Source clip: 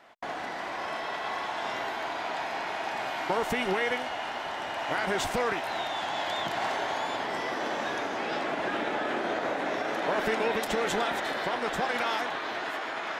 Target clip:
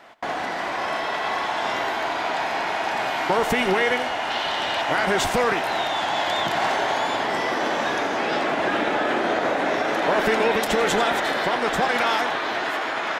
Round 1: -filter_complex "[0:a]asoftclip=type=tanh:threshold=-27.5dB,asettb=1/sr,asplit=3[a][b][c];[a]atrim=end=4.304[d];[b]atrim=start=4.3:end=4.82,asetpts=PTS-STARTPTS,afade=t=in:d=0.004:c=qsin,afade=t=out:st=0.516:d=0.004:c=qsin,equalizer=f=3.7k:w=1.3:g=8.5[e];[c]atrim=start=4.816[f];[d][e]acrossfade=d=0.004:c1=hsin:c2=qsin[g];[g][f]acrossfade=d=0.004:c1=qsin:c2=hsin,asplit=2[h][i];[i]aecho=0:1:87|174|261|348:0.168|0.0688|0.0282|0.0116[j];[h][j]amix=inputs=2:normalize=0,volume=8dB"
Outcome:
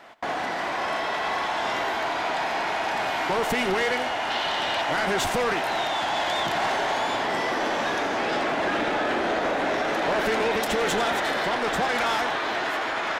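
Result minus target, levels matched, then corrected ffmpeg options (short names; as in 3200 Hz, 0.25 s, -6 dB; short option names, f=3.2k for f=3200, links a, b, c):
soft clip: distortion +15 dB
-filter_complex "[0:a]asoftclip=type=tanh:threshold=-16.5dB,asettb=1/sr,asplit=3[a][b][c];[a]atrim=end=4.304[d];[b]atrim=start=4.3:end=4.82,asetpts=PTS-STARTPTS,afade=t=in:d=0.004:c=qsin,afade=t=out:st=0.516:d=0.004:c=qsin,equalizer=f=3.7k:w=1.3:g=8.5[e];[c]atrim=start=4.816[f];[d][e]acrossfade=d=0.004:c1=hsin:c2=qsin[g];[g][f]acrossfade=d=0.004:c1=qsin:c2=hsin,asplit=2[h][i];[i]aecho=0:1:87|174|261|348:0.168|0.0688|0.0282|0.0116[j];[h][j]amix=inputs=2:normalize=0,volume=8dB"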